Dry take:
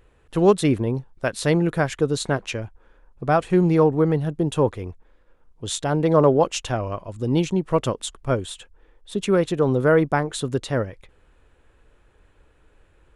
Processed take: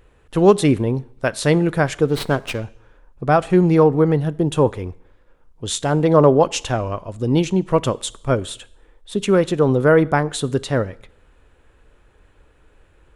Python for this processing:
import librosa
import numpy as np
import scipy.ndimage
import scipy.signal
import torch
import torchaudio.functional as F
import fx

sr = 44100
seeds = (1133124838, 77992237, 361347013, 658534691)

y = fx.rev_double_slope(x, sr, seeds[0], early_s=0.65, late_s=1.7, knee_db=-28, drr_db=18.5)
y = fx.running_max(y, sr, window=5, at=(2.05, 2.63))
y = y * 10.0 ** (3.5 / 20.0)